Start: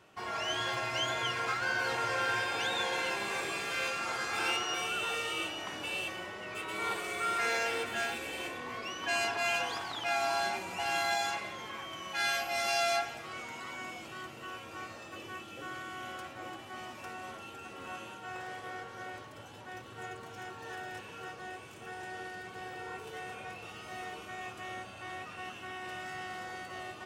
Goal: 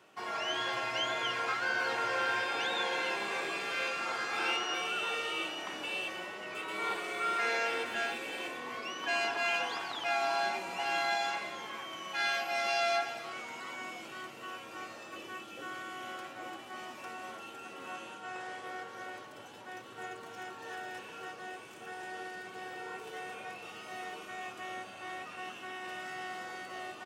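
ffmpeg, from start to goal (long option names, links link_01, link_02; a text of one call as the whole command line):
ffmpeg -i in.wav -filter_complex "[0:a]highpass=200,acrossover=split=5300[link_01][link_02];[link_02]acompressor=threshold=-55dB:ratio=4:attack=1:release=60[link_03];[link_01][link_03]amix=inputs=2:normalize=0,asettb=1/sr,asplit=3[link_04][link_05][link_06];[link_04]atrim=end=17.934[link_07];[link_05]atrim=start=17.93:end=18.67,asetpts=PTS-STARTPTS,afade=type=in:duration=0.004:curve=qsin,afade=type=out:start_time=0.736:duration=0.004:curve=qsin,lowpass=frequency=11000:width=0.5412,lowpass=frequency=11000:width=1.3066[link_08];[link_06]atrim=start=18.666[link_09];[link_07][link_08]acrossfade=duration=0.004:curve1=hsin:curve2=qsin[link_10];[link_10][link_09]acrossfade=duration=0.004:curve1=qsin:curve2=hsin,aecho=1:1:297:0.158" out.wav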